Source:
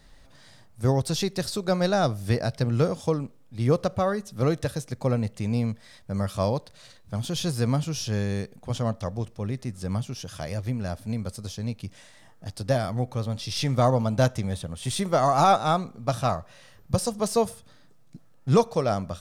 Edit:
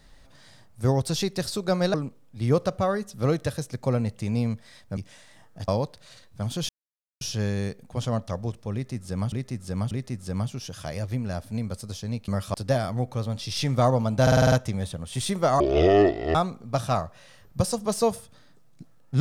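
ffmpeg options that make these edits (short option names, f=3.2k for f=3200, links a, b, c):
-filter_complex "[0:a]asplit=18[a][b][c][d][e][f][g][h][i][j][k][l][m][n][o][p][q][r];[a]atrim=end=1.942[s];[b]atrim=start=3.118:end=6.152[t];[c]atrim=start=11.828:end=12.542[u];[d]atrim=start=6.408:end=7.42,asetpts=PTS-STARTPTS,afade=t=out:st=1.008:d=0.004:c=hsin[v];[e]atrim=start=7.42:end=7.94,asetpts=PTS-STARTPTS,volume=0[w];[f]atrim=start=7.94:end=10.052,asetpts=PTS-STARTPTS,afade=t=in:d=0.004:c=hsin[x];[g]atrim=start=9.458:end=10.052[y];[h]atrim=start=9.458:end=11.832[z];[i]atrim=start=6.148:end=6.412[aa];[j]atrim=start=12.538:end=14.272[ab];[k]atrim=start=14.218:end=14.272[ac];[l]atrim=start=14.218:end=14.272[ad];[m]atrim=start=14.218:end=14.272[ae];[n]atrim=start=14.218:end=14.272[af];[o]atrim=start=14.218:end=14.272[ag];[p]atrim=start=14.218:end=15.304[ah];[q]atrim=start=15.3:end=15.69,asetpts=PTS-STARTPTS,asetrate=22932,aresample=44100[ai];[r]atrim=start=15.686[aj];[s][t]acrossfade=d=0.004:c1=hsin:c2=hsin[ak];[ak][u]acrossfade=d=0.004:c1=hsin:c2=hsin[al];[v][w][x]concat=n=3:v=0:a=1[am];[al][am]acrossfade=d=0.004:c1=hsin:c2=hsin[an];[an][y]acrossfade=d=0.004:c1=hsin:c2=hsin[ao];[ao][z]acrossfade=d=0.004:c1=hsin:c2=hsin[ap];[ap][aa]acrossfade=d=0.004:c1=hsin:c2=hsin[aq];[aq][ab]acrossfade=d=0.004:c1=hsin:c2=hsin[ar];[ar][ac]acrossfade=d=0.004:c1=hsin:c2=hsin[as];[as][ad]acrossfade=d=0.004:c1=hsin:c2=hsin[at];[at][ae]acrossfade=d=0.004:c1=hsin:c2=hsin[au];[au][af]acrossfade=d=0.004:c1=hsin:c2=hsin[av];[av][ag]acrossfade=d=0.004:c1=hsin:c2=hsin[aw];[aw][ah]acrossfade=d=0.004:c1=hsin:c2=hsin[ax];[ax][ai]acrossfade=d=0.004:c1=hsin:c2=hsin[ay];[ay][aj]acrossfade=d=0.004:c1=hsin:c2=hsin"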